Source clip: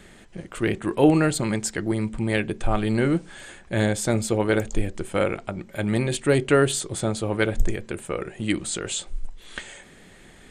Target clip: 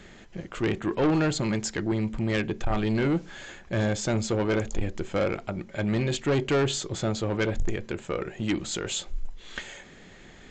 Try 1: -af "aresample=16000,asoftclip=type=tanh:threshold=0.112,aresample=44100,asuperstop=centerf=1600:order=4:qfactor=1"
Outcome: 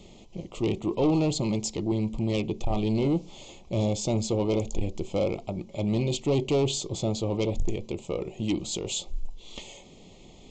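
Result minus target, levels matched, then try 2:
2 kHz band -10.5 dB
-af "aresample=16000,asoftclip=type=tanh:threshold=0.112,aresample=44100"

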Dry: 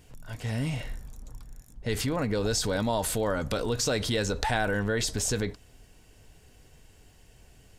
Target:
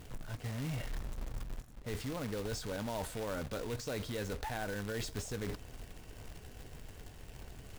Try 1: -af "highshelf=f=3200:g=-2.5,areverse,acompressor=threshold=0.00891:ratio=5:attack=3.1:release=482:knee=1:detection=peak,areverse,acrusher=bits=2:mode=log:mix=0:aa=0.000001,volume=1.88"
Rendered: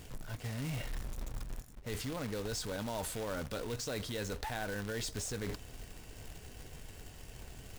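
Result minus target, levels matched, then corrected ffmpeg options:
8 kHz band +4.0 dB
-af "highshelf=f=3200:g=-11,areverse,acompressor=threshold=0.00891:ratio=5:attack=3.1:release=482:knee=1:detection=peak,areverse,acrusher=bits=2:mode=log:mix=0:aa=0.000001,volume=1.88"

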